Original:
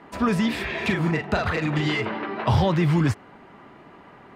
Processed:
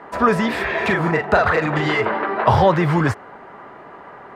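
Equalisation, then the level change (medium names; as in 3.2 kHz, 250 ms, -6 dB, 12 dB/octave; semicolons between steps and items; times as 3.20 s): high-order bell 870 Hz +9 dB 2.5 oct; +1.0 dB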